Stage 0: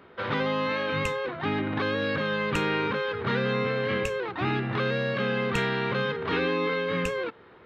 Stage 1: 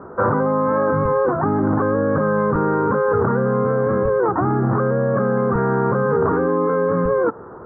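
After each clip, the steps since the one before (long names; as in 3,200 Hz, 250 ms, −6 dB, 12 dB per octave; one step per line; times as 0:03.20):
Butterworth low-pass 1,400 Hz 48 dB per octave
in parallel at +2 dB: compressor whose output falls as the input rises −32 dBFS, ratio −0.5
on the sum: level +6 dB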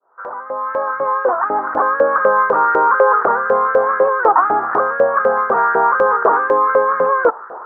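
fade in at the beginning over 2.06 s
auto-filter high-pass saw up 4 Hz 550–1,700 Hz
level +5.5 dB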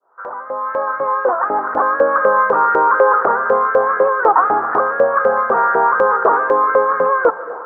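convolution reverb RT60 1.6 s, pre-delay 95 ms, DRR 14 dB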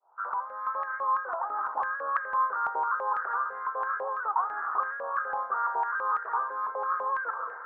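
reversed playback
downward compressor 6 to 1, threshold −21 dBFS, peak gain reduction 13.5 dB
reversed playback
band-pass on a step sequencer 6 Hz 840–1,800 Hz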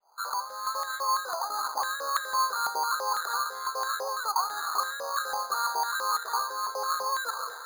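bad sample-rate conversion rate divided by 8×, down none, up hold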